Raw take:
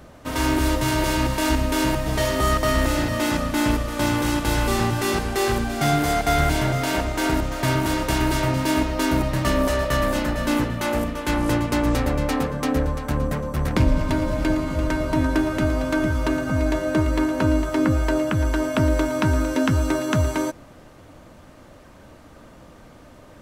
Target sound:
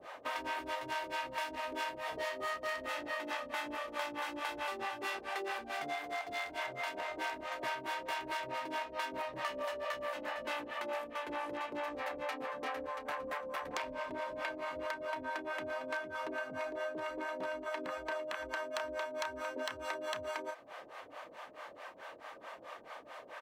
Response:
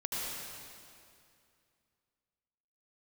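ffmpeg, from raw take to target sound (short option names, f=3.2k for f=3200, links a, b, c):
-filter_complex "[0:a]acrossover=split=480 3500:gain=0.0891 1 0.178[a][b][c];[a][b][c]amix=inputs=3:normalize=0,asplit=2[d][e];[e]adelay=31,volume=-8dB[f];[d][f]amix=inputs=2:normalize=0,aeval=exprs='0.126*(abs(mod(val(0)/0.126+3,4)-2)-1)':c=same,acrossover=split=490[g][h];[g]aeval=exprs='val(0)*(1-1/2+1/2*cos(2*PI*4.6*n/s))':c=same[i];[h]aeval=exprs='val(0)*(1-1/2-1/2*cos(2*PI*4.6*n/s))':c=same[j];[i][j]amix=inputs=2:normalize=0,acompressor=threshold=-44dB:ratio=6,highpass=f=370:p=1,bandreject=f=1.4k:w=13,volume=8dB"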